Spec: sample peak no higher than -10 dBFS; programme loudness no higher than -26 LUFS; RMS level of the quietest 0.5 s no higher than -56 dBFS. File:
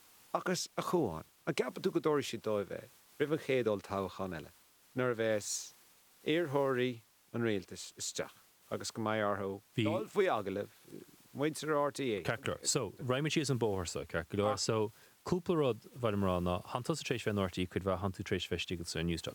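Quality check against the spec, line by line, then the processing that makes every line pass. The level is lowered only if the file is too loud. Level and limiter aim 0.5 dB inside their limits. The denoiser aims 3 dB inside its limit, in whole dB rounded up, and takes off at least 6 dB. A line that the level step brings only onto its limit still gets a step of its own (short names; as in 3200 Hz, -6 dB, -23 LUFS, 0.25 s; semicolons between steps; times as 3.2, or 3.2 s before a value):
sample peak -19.0 dBFS: OK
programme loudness -35.5 LUFS: OK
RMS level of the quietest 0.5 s -64 dBFS: OK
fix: none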